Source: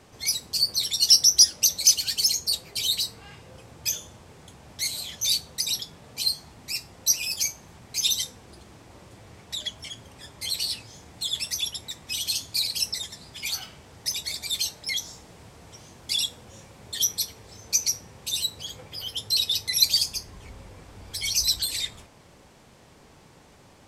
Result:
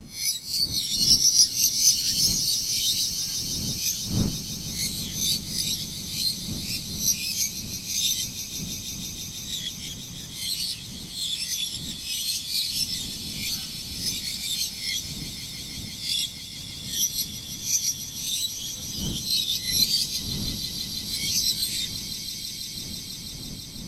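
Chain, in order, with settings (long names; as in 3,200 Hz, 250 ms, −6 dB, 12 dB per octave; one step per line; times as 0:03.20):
peak hold with a rise ahead of every peak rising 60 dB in 0.36 s
wind on the microphone 230 Hz −33 dBFS
noise gate with hold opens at −34 dBFS
parametric band 210 Hz +9.5 dB 2.1 octaves
notch filter 1,700 Hz, Q 19
in parallel at +1 dB: downward compressor, threshold −34 dBFS, peak gain reduction 26 dB
on the sum: guitar amp tone stack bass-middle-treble 5-5-5
on a send: echo that builds up and dies away 164 ms, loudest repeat 5, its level −14.5 dB
on the sum: level +1.5 dB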